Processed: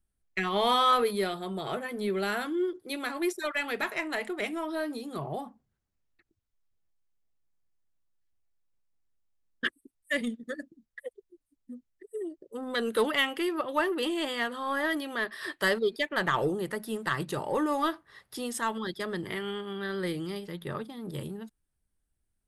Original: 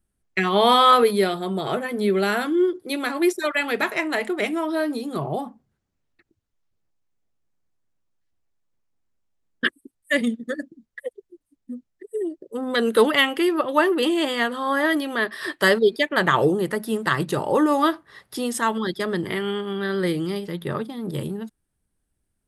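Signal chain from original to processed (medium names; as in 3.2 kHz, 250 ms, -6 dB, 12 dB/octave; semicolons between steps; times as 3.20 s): bass shelf 400 Hz -6.5 dB; in parallel at -9 dB: saturation -19.5 dBFS, distortion -10 dB; on the sum: bass shelf 100 Hz +11.5 dB; trim -9 dB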